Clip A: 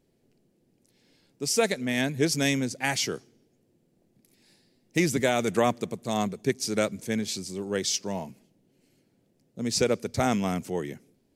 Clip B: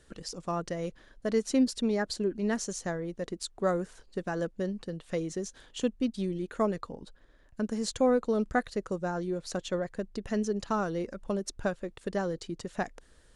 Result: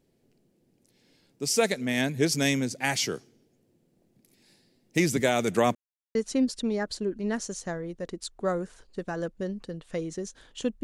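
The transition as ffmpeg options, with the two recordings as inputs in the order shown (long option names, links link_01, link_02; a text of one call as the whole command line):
ffmpeg -i cue0.wav -i cue1.wav -filter_complex "[0:a]apad=whole_dur=10.83,atrim=end=10.83,asplit=2[link_01][link_02];[link_01]atrim=end=5.75,asetpts=PTS-STARTPTS,afade=type=out:start_time=5.746:duration=0.004:curve=hsin[link_03];[link_02]atrim=start=5.75:end=6.15,asetpts=PTS-STARTPTS,volume=0[link_04];[1:a]atrim=start=1.34:end=6.02,asetpts=PTS-STARTPTS,afade=type=in:duration=0.004:curve=hsin[link_05];[link_03][link_04][link_05]concat=n=3:v=0:a=1" out.wav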